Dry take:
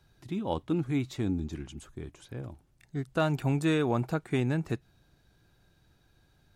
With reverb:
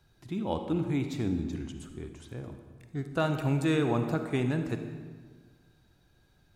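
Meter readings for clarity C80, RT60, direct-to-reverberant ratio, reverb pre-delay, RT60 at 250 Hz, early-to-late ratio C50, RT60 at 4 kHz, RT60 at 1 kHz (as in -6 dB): 9.0 dB, 1.6 s, 6.5 dB, 39 ms, 1.7 s, 7.0 dB, 1.1 s, 1.5 s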